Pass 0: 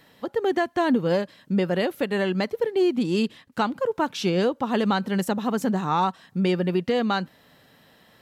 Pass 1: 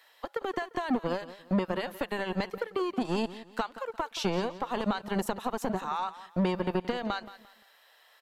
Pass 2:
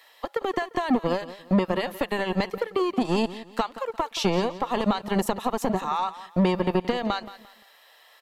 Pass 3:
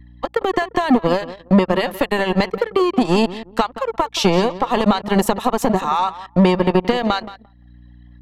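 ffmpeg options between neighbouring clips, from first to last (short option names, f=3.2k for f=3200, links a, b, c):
-filter_complex "[0:a]acrossover=split=140[a][b];[b]acompressor=threshold=-25dB:ratio=4[c];[a][c]amix=inputs=2:normalize=0,acrossover=split=590[d][e];[d]acrusher=bits=3:mix=0:aa=0.5[f];[f][e]amix=inputs=2:normalize=0,aecho=1:1:174|348|522:0.168|0.052|0.0161,volume=-2.5dB"
-af "bandreject=f=1.5k:w=7.8,volume=6dB"
-af "anlmdn=0.1,aeval=exprs='val(0)+0.00112*(sin(2*PI*60*n/s)+sin(2*PI*2*60*n/s)/2+sin(2*PI*3*60*n/s)/3+sin(2*PI*4*60*n/s)/4+sin(2*PI*5*60*n/s)/5)':c=same,acompressor=mode=upward:threshold=-42dB:ratio=2.5,volume=8dB"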